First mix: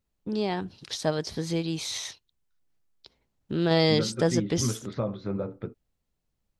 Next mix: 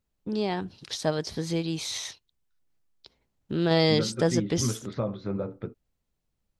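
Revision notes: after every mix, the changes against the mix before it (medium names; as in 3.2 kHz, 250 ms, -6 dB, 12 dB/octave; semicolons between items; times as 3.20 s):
no change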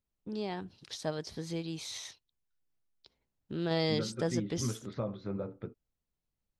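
first voice -8.5 dB; second voice -6.0 dB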